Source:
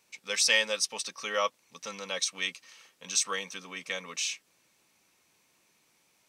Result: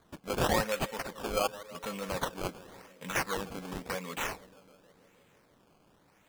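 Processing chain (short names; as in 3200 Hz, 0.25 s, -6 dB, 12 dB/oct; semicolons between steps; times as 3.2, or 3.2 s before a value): in parallel at +1 dB: compressor, threshold -42 dBFS, peak gain reduction 21 dB; on the sum: low shelf 340 Hz +10.5 dB; tape echo 0.157 s, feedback 87%, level -14.5 dB, low-pass 1400 Hz; decimation with a swept rate 16×, swing 100% 0.91 Hz; gain -4.5 dB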